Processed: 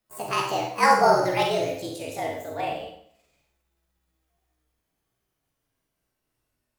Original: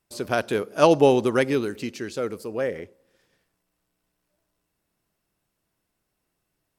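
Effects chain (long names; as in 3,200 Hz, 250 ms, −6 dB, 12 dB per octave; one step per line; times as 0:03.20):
pitch glide at a constant tempo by +11.5 semitones ending unshifted
four-comb reverb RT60 0.58 s, combs from 33 ms, DRR 0.5 dB
frequency shifter −63 Hz
level −3 dB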